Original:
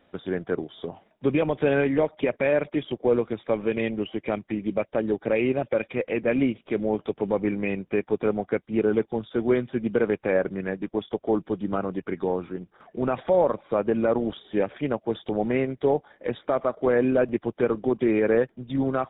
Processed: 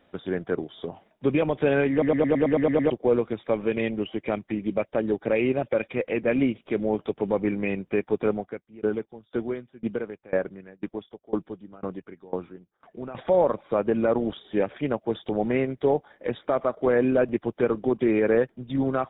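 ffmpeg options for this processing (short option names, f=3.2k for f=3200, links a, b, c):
-filter_complex "[0:a]asettb=1/sr,asplit=3[a][b][c];[a]atrim=end=8.334[d];[b]atrim=start=8.33:end=13.15,asetpts=PTS-STARTPTS,afade=t=in:d=0.004:c=qsin,afade=t=out:st=4.816:d=0.004:c=qsin,aeval=exprs='val(0)*pow(10,-24*if(lt(mod(2*n/s,1),2*abs(2)/1000),1-mod(2*n/s,1)/(2*abs(2)/1000),(mod(2*n/s,1)-2*abs(2)/1000)/(1-2*abs(2)/1000))/20)':c=same[e];[c]atrim=start=13.146[f];[d][e]acrossfade=d=0.004:c1=hsin:c2=qsin[g];[g][f]acrossfade=d=0.004:c1=qsin:c2=hsin,asplit=10[h][i][j][k][l][m][n][o][p][q];[h]atrim=end=2.022[r];[i]atrim=start=1.908:end=2.022[s];[j]atrim=start=1.908:end=2.022[t];[k]atrim=start=1.908:end=2.022[u];[l]atrim=start=1.908:end=2.022[v];[m]atrim=start=1.908:end=2.022[w];[n]atrim=start=1.908:end=2.022[x];[o]atrim=start=1.908:end=2.022[y];[p]atrim=start=1.908:end=2.022[z];[q]atrim=start=2.898[aa];[r][s]acrossfade=d=0.004:c1=hsin:c2=hsin[ab];[ab][t]acrossfade=d=0.004:c1=hsin:c2=hsin[ac];[ac][u]acrossfade=d=0.004:c1=hsin:c2=hsin[ad];[ad][v]acrossfade=d=0.004:c1=hsin:c2=hsin[ae];[ae][w]acrossfade=d=0.004:c1=hsin:c2=hsin[af];[af][x]acrossfade=d=0.004:c1=hsin:c2=hsin[ag];[ag][y]acrossfade=d=0.004:c1=hsin:c2=hsin[ah];[ah][z]acrossfade=d=0.004:c1=hsin:c2=hsin[ai];[ai][aa]acrossfade=d=0.004:c1=hsin:c2=hsin"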